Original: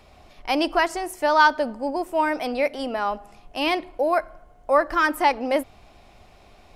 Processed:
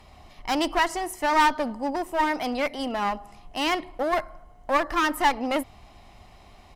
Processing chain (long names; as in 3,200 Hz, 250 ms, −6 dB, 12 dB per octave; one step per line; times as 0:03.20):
comb filter 1 ms, depth 37%
asymmetric clip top −27 dBFS